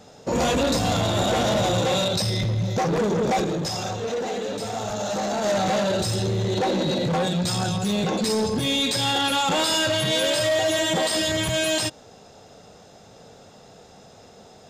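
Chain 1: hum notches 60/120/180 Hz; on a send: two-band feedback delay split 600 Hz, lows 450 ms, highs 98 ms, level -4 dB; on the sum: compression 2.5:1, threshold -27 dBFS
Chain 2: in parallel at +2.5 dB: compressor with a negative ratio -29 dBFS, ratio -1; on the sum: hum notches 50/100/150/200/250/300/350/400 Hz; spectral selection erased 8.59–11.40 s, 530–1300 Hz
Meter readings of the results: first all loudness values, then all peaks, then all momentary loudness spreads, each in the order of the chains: -27.0 LUFS, -19.0 LUFS; -15.5 dBFS, -9.5 dBFS; 15 LU, 19 LU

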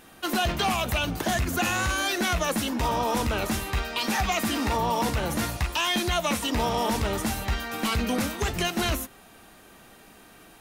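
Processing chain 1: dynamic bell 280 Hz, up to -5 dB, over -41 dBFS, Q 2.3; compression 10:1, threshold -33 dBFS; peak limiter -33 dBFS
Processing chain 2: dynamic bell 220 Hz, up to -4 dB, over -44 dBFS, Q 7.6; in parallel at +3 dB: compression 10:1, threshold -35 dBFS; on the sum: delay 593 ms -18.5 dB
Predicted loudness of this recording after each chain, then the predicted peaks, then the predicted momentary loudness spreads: -41.5 LUFS, -23.5 LUFS; -33.0 dBFS, -12.0 dBFS; 10 LU, 17 LU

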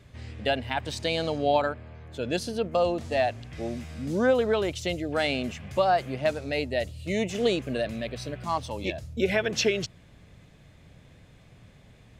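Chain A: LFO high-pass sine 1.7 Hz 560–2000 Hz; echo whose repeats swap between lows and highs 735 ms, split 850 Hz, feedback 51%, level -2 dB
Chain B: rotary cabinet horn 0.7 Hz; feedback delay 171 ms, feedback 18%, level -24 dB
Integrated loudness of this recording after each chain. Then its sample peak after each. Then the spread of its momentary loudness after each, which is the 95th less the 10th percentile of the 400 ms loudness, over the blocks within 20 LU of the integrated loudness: -25.5 LUFS, -30.0 LUFS; -6.5 dBFS, -12.0 dBFS; 13 LU, 10 LU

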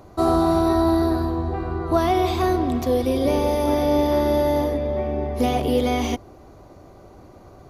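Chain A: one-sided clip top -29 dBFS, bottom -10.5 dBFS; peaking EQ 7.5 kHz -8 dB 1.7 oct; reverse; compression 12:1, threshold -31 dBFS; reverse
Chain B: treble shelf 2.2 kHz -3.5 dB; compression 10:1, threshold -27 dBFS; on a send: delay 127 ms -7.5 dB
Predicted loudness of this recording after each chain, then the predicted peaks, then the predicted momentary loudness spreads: -35.5 LUFS, -31.0 LUFS; -22.5 dBFS, -19.0 dBFS; 12 LU, 16 LU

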